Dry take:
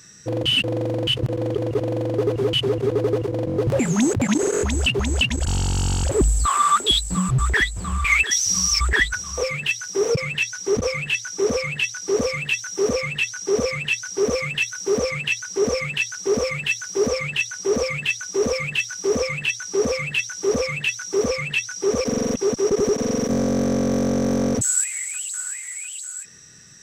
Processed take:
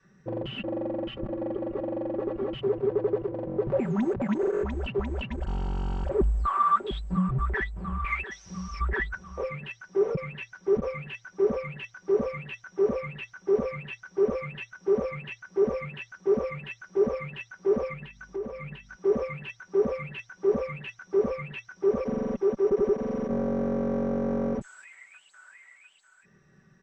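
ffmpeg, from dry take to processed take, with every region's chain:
-filter_complex "[0:a]asettb=1/sr,asplit=3[a][b][c];[a]atrim=end=0.594[d];[b]atrim=start=0.59:end=2.55,asetpts=PTS-STARTPTS,afade=t=in:d=0.004:c=qsin,afade=t=out:st=1.956:d=0.004:c=qsin,highshelf=f=9k:g=-11,bandreject=f=490:w=12,aecho=1:1:3.6:0.66,atrim=end_sample=86436[e];[c]atrim=start=2.546[f];[d][e]acrossfade=d=0.004:c1=hsin:c2=qsin[g];[g][f]acrossfade=d=0.004:c1=qsin:c2=hsin,asettb=1/sr,asplit=3[h][i][j];[h]atrim=end=17.934[k];[i]atrim=start=17.93:end=18.96,asetpts=PTS-STARTPTS,afade=t=in:d=0.004:c=qsin,afade=t=out:st=1.026:d=0.004:c=qsin,acompressor=threshold=-26dB:ratio=12:attack=3.2:release=140:knee=1:detection=peak,aeval=exprs='val(0)+0.00355*(sin(2*PI*50*n/s)+sin(2*PI*2*50*n/s)/2+sin(2*PI*3*50*n/s)/3+sin(2*PI*4*50*n/s)/4+sin(2*PI*5*50*n/s)/5)':c=same[l];[j]atrim=start=18.956[m];[k][l]acrossfade=d=0.004:c1=hsin:c2=qsin[n];[n][m]acrossfade=d=0.004:c1=qsin:c2=hsin,lowpass=1.3k,adynamicequalizer=threshold=0.02:dfrequency=150:dqfactor=0.85:tfrequency=150:tqfactor=0.85:attack=5:release=100:ratio=0.375:range=2.5:mode=cutabove:tftype=bell,aecho=1:1:5.2:0.65,volume=-6dB"

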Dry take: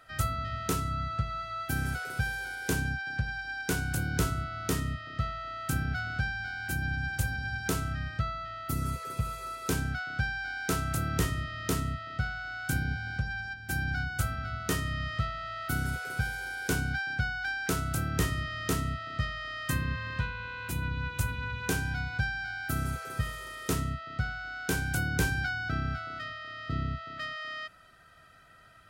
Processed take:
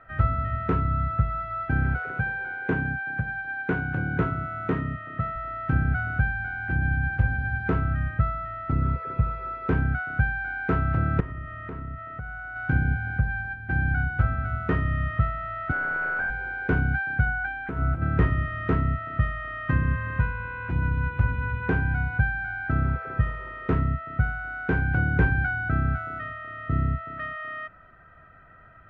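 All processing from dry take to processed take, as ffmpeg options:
-filter_complex "[0:a]asettb=1/sr,asplit=3[a][b][c];[a]atrim=end=2.114[d];[b]atrim=start=2.11:end=5.36,asetpts=PTS-STARTPTS,afade=t=in:d=0.004:c=qsin,afade=t=out:st=3.246:d=0.004:c=qsin,highpass=130,bandreject=f=5k:w=5.6[e];[c]atrim=start=5.356[f];[d][e]acrossfade=d=0.004:c1=hsin:c2=qsin[g];[g][f]acrossfade=d=0.004:c1=qsin:c2=hsin,asettb=1/sr,asplit=3[h][i][j];[h]atrim=end=11.204[k];[i]atrim=start=11.2:end=12.56,asetpts=PTS-STARTPTS,afade=t=in:d=0.004:c=qsin,afade=t=out:st=1.356:d=0.004:c=qsin,lowpass=f=2k:p=1,equalizer=f=130:w=0.3:g=-5.5,acompressor=threshold=-38dB:ratio=6:attack=3.2:release=140:knee=1:detection=peak[l];[j]atrim=start=12.556[m];[k][l]acrossfade=d=0.004:c1=hsin:c2=qsin[n];[n][m]acrossfade=d=0.004:c1=qsin:c2=hsin,asettb=1/sr,asplit=3[o][p][q];[o]atrim=end=15.724[r];[p]atrim=start=15.72:end=16.3,asetpts=PTS-STARTPTS,afade=t=in:d=0.004:c=qsin,afade=t=out:st=0.576:d=0.004:c=qsin,highpass=570,asplit=2[s][t];[t]highpass=f=720:p=1,volume=24dB,asoftclip=type=tanh:threshold=-21.5dB[u];[s][u]amix=inputs=2:normalize=0,lowpass=f=1.1k:p=1,volume=-6dB[v];[q]atrim=start=16.296[w];[r][v]acrossfade=d=0.004:c1=hsin:c2=qsin[x];[x][w]acrossfade=d=0.004:c1=qsin:c2=hsin,asettb=1/sr,asplit=3[y][z][aa];[y]atrim=end=17.254[ab];[z]atrim=start=17.25:end=18.02,asetpts=PTS-STARTPTS,afade=t=in:d=0.004:c=qsin,afade=t=out:st=0.766:d=0.004:c=qsin,highshelf=f=7.6k:t=q:w=3:g=13.5,acompressor=threshold=-26dB:ratio=12:attack=3.2:release=140:knee=1:detection=peak,asplit=2[ac][ad];[ad]adelay=15,volume=-7.5dB[ae];[ac][ae]amix=inputs=2:normalize=0,atrim=end_sample=33957[af];[aa]atrim=start=18.016[ag];[ab][af]acrossfade=d=0.004:c1=hsin:c2=qsin[ah];[ah][ag]acrossfade=d=0.004:c1=qsin:c2=hsin,lowpass=f=2k:w=0.5412,lowpass=f=2k:w=1.3066,lowshelf=f=83:g=6.5,volume=5.5dB"

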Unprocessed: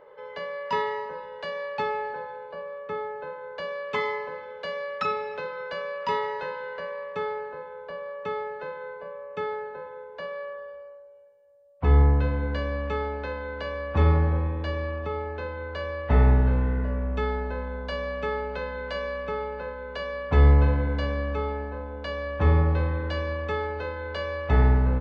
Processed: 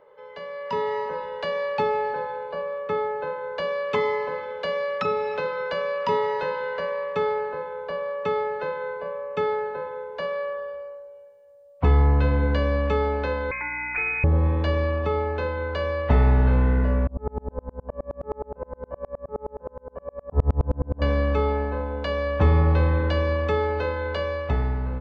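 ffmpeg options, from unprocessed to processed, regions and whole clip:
-filter_complex "[0:a]asettb=1/sr,asplit=3[a][b][c];[a]atrim=end=13.514[d];[b]atrim=start=13.51:end=14.24,asetpts=PTS-STARTPTS,afade=t=in:d=0.004:c=qsin,afade=t=out:st=0.726:d=0.004:c=qsin,lowpass=f=2.2k:t=q:w=0.5098,lowpass=f=2.2k:t=q:w=0.6013,lowpass=f=2.2k:t=q:w=0.9,lowpass=f=2.2k:t=q:w=2.563,afreqshift=-2600,aeval=exprs='val(0)+0.00224*(sin(2*PI*60*n/s)+sin(2*PI*2*60*n/s)/2+sin(2*PI*3*60*n/s)/3+sin(2*PI*4*60*n/s)/4+sin(2*PI*5*60*n/s)/5)':c=same[e];[c]atrim=start=14.236[f];[d][e]acrossfade=d=0.004:c1=hsin:c2=qsin[g];[g][f]acrossfade=d=0.004:c1=qsin:c2=hsin,asettb=1/sr,asplit=3[h][i][j];[h]atrim=end=17.074[k];[i]atrim=start=17.07:end=21.02,asetpts=PTS-STARTPTS,afade=t=in:d=0.004:c=qsin,afade=t=out:st=3.946:d=0.004:c=qsin,lowpass=f=1k:w=0.5412,lowpass=f=1k:w=1.3066,aeval=exprs='val(0)*pow(10,-37*if(lt(mod(-9.6*n/s,1),2*abs(-9.6)/1000),1-mod(-9.6*n/s,1)/(2*abs(-9.6)/1000),(mod(-9.6*n/s,1)-2*abs(-9.6)/1000)/(1-2*abs(-9.6)/1000))/20)':c=same[l];[j]atrim=start=21.016[m];[k][l]acrossfade=d=0.004:c1=hsin:c2=qsin[n];[n][m]acrossfade=d=0.004:c1=qsin:c2=hsin,acrossover=split=730|4100[o][p][q];[o]acompressor=threshold=-22dB:ratio=4[r];[p]acompressor=threshold=-36dB:ratio=4[s];[q]acompressor=threshold=-57dB:ratio=4[t];[r][s][t]amix=inputs=3:normalize=0,equalizer=f=1.7k:w=4.2:g=-2.5,dynaudnorm=f=140:g=11:m=10dB,volume=-3dB"

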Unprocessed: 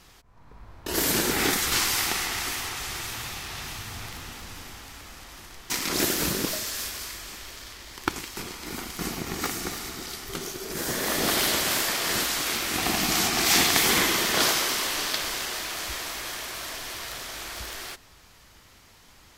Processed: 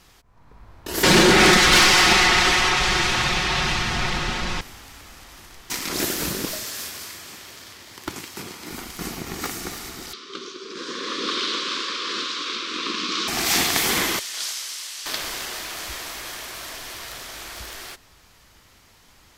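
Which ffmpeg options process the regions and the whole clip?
-filter_complex "[0:a]asettb=1/sr,asplit=3[a][b][c];[a]atrim=end=1.034[d];[b]atrim=start=1.03:end=4.61,asetpts=PTS-STARTPTS,afade=t=in:d=0.004:c=qsin,afade=t=out:st=3.576:d=0.004:c=qsin,lowpass=4.6k,aecho=1:1:5.5:0.69,atrim=end_sample=157878,aeval=exprs='0.335*sin(PI/2*3.16*val(0)/0.335)':c=same[e];[c]atrim=start=4.606[f];[d][e]acrossfade=d=0.004:c1=hsin:c2=qsin[g];[g][f]acrossfade=d=0.004:c1=qsin:c2=hsin,asettb=1/sr,asplit=3[h][i][j];[h]atrim=end=6.644[k];[i]atrim=start=6.64:end=8.71,asetpts=PTS-STARTPTS,afade=t=in:d=0.004:c=qsin,afade=t=out:st=2.066:d=0.004:c=qsin,highpass=f=90:w=0.5412,highpass=f=90:w=1.3066,lowshelf=f=390:g=2.5,asoftclip=type=hard:threshold=-20dB[l];[j]atrim=start=8.706[m];[k][l]acrossfade=d=0.004:c1=hsin:c2=qsin[n];[n][m]acrossfade=d=0.004:c1=qsin:c2=hsin,asettb=1/sr,asplit=3[o][p][q];[o]atrim=end=10.134[r];[p]atrim=start=10.13:end=13.28,asetpts=PTS-STARTPTS,afade=t=in:d=0.004:c=qsin,afade=t=out:st=3.146:d=0.004:c=qsin,asuperstop=centerf=750:order=8:qfactor=1.6,highpass=f=240:w=0.5412,highpass=f=240:w=1.3066,equalizer=f=630:t=q:w=4:g=-6,equalizer=f=1.1k:t=q:w=4:g=6,equalizer=f=1.9k:t=q:w=4:g=-7,equalizer=f=3.7k:t=q:w=4:g=5,lowpass=f=5.3k:w=0.5412,lowpass=f=5.3k:w=1.3066[s];[q]atrim=start=13.276[t];[r][s]acrossfade=d=0.004:c1=hsin:c2=qsin[u];[u][t]acrossfade=d=0.004:c1=qsin:c2=hsin,asettb=1/sr,asplit=3[v][w][x];[v]atrim=end=14.194[y];[w]atrim=start=14.19:end=15.06,asetpts=PTS-STARTPTS,afade=t=in:d=0.004:c=qsin,afade=t=out:st=0.866:d=0.004:c=qsin,highpass=120,lowpass=7.6k,aderivative[z];[x]atrim=start=15.056[aa];[y][z]acrossfade=d=0.004:c1=hsin:c2=qsin[ab];[ab][aa]acrossfade=d=0.004:c1=qsin:c2=hsin"

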